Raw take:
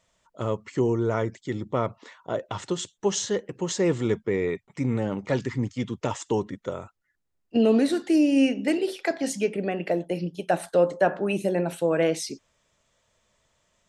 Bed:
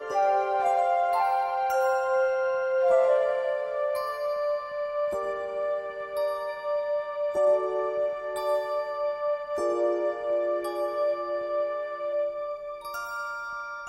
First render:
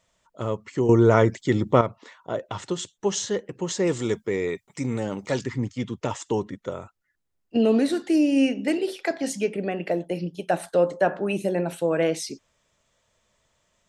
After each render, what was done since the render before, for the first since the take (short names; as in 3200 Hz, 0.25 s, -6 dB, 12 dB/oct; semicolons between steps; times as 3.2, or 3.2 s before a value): 0.89–1.81 gain +8.5 dB; 3.87–5.44 tone controls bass -3 dB, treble +11 dB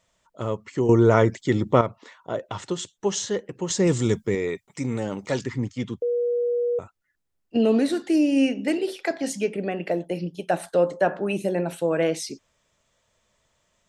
3.7–4.35 tone controls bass +9 dB, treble +5 dB; 6.02–6.79 bleep 481 Hz -20.5 dBFS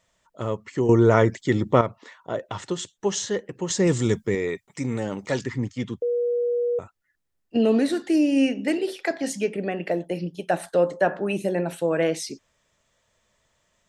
bell 1800 Hz +3.5 dB 0.24 oct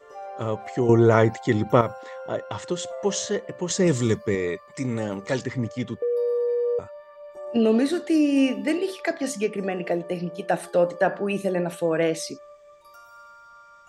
add bed -14 dB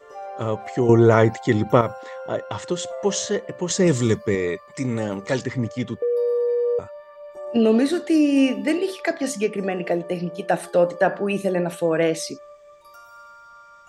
gain +2.5 dB; limiter -2 dBFS, peak gain reduction 2 dB